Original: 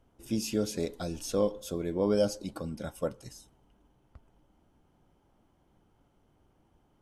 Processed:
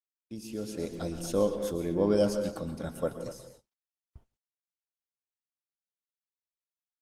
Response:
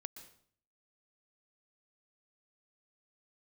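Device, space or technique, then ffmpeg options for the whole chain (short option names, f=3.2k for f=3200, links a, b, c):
speakerphone in a meeting room: -filter_complex "[1:a]atrim=start_sample=2205[a];[0:a][a]afir=irnorm=-1:irlink=0,asplit=2[b][c];[c]adelay=240,highpass=300,lowpass=3.4k,asoftclip=type=hard:threshold=-28dB,volume=-10dB[d];[b][d]amix=inputs=2:normalize=0,dynaudnorm=f=150:g=11:m=13dB,agate=range=-50dB:threshold=-46dB:ratio=16:detection=peak,volume=-7dB" -ar 48000 -c:a libopus -b:a 24k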